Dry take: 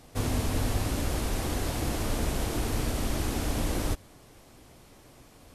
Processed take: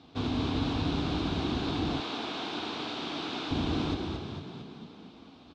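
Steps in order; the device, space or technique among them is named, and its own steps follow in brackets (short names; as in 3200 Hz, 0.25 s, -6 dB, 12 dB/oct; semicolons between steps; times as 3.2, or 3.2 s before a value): frequency-shifting delay pedal into a guitar cabinet (frequency-shifting echo 0.226 s, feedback 58%, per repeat +30 Hz, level -5 dB; speaker cabinet 93–4200 Hz, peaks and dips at 120 Hz -7 dB, 280 Hz +5 dB, 550 Hz -10 dB, 1900 Hz -10 dB, 3700 Hz +7 dB); 2–3.51 weighting filter A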